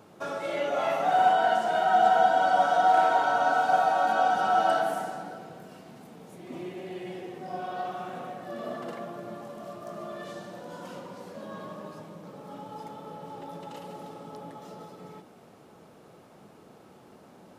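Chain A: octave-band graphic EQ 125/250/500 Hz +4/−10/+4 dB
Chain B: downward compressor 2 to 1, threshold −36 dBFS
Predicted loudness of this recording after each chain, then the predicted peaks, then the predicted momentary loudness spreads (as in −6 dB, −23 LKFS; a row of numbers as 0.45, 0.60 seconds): −24.0, −36.0 LKFS; −9.0, −20.5 dBFS; 21, 22 LU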